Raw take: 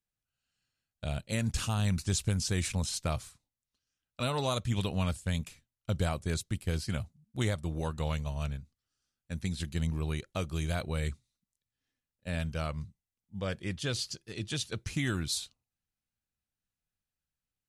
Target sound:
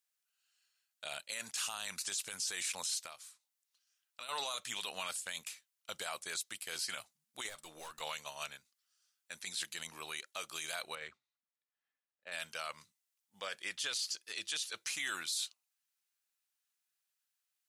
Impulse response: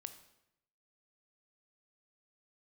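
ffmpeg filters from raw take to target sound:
-filter_complex "[0:a]highpass=990,highshelf=f=4k:g=5.5,asettb=1/sr,asplit=3[a][b][c];[a]atrim=end=3.024[d];[b]atrim=start=3.02:end=4.29,asetpts=PTS-STARTPTS,afade=t=in:d=0.004:c=qsin,afade=t=out:st=1.266:d=0.004:c=qsin,acompressor=threshold=-54dB:ratio=3[e];[c]atrim=start=4.286[f];[d][e]acrossfade=d=0.004:c1=hsin:c2=qsin[g];[g][f]acrossfade=d=0.004:c1=qsin:c2=hsin,alimiter=level_in=6.5dB:limit=-24dB:level=0:latency=1:release=16,volume=-6.5dB,asettb=1/sr,asplit=3[h][i][j];[h]atrim=end=7.494[k];[i]atrim=start=7.49:end=8.01,asetpts=PTS-STARTPTS,afade=t=in:d=0.004:c=qsin,afade=t=out:st=0.516:d=0.004:c=qsin,aeval=exprs='(tanh(224*val(0)+0.3)-tanh(0.3))/224':c=same[l];[j]atrim=start=8.006[m];[k][l]acrossfade=d=0.004:c1=hsin:c2=qsin[n];[n][m]acrossfade=d=0.004:c1=qsin:c2=hsin,asettb=1/sr,asplit=3[o][p][q];[o]atrim=end=10.954[r];[p]atrim=start=10.95:end=12.32,asetpts=PTS-STARTPTS,afade=t=in:d=0.004:c=qsin,afade=t=out:st=1.366:d=0.004:c=qsin,adynamicsmooth=sensitivity=2.5:basefreq=1.8k[s];[q]atrim=start=12.316[t];[r][s]acrossfade=d=0.004:c1=hsin:c2=qsin[u];[u][t]acrossfade=d=0.004:c1=qsin:c2=hsin,volume=3dB"

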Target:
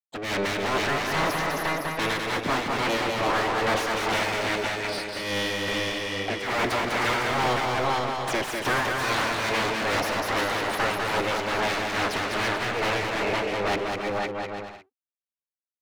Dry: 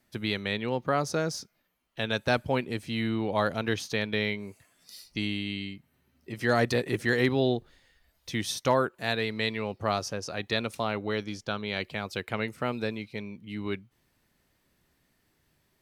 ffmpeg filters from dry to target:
-filter_complex "[0:a]asplit=2[a][b];[b]aecho=0:1:510:0.398[c];[a][c]amix=inputs=2:normalize=0,afftfilt=real='re*gte(hypot(re,im),0.00891)':imag='im*gte(hypot(re,im),0.00891)':win_size=1024:overlap=0.75,aeval=exprs='abs(val(0))':c=same,highpass=f=59:w=0.5412,highpass=f=59:w=1.3066,asplit=2[d][e];[e]highpass=f=720:p=1,volume=38dB,asoftclip=type=tanh:threshold=-13.5dB[f];[d][f]amix=inputs=2:normalize=0,lowpass=f=2k:p=1,volume=-6dB,tremolo=f=2.4:d=0.59,asplit=2[g][h];[h]aecho=0:1:200|340|438|506.6|554.6:0.631|0.398|0.251|0.158|0.1[i];[g][i]amix=inputs=2:normalize=0,volume=-2.5dB"

